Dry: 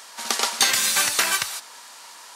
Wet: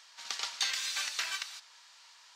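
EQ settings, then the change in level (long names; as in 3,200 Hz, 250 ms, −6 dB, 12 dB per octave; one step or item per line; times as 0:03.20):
high-frequency loss of the air 190 metres
first difference
0.0 dB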